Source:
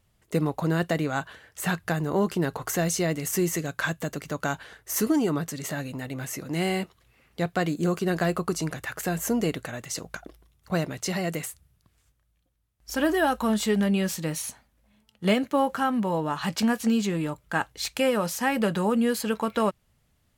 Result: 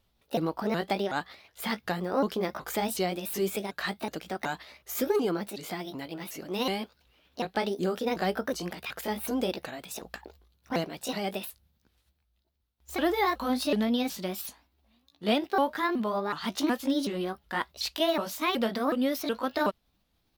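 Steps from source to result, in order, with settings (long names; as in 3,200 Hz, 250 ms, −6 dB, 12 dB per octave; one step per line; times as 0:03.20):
pitch shifter swept by a sawtooth +6 semitones, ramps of 371 ms
graphic EQ with 10 bands 125 Hz −10 dB, 2,000 Hz −4 dB, 4,000 Hz +6 dB, 8,000 Hz −9 dB
level −1 dB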